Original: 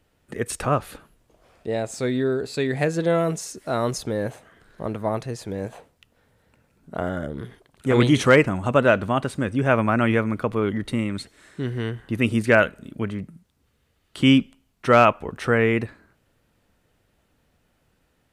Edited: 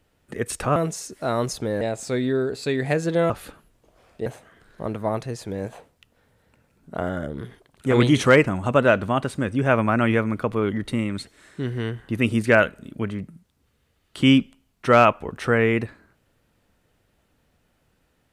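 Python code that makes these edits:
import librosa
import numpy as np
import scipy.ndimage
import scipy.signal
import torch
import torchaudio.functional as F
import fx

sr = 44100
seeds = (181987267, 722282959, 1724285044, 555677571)

y = fx.edit(x, sr, fx.swap(start_s=0.76, length_s=0.96, other_s=3.21, other_length_s=1.05), tone=tone)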